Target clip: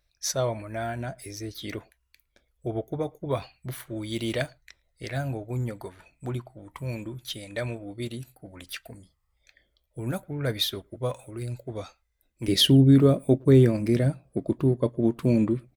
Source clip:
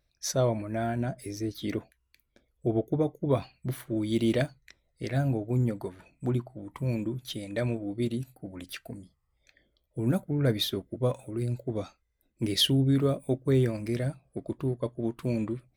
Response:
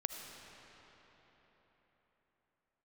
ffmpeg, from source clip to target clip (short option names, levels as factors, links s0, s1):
-filter_complex "[0:a]asetnsamples=n=441:p=0,asendcmd='12.48 equalizer g 5',equalizer=f=230:t=o:w=2.3:g=-10,asplit=2[s0][s1];[s1]adelay=110,highpass=300,lowpass=3400,asoftclip=type=hard:threshold=0.112,volume=0.0316[s2];[s0][s2]amix=inputs=2:normalize=0,volume=1.5"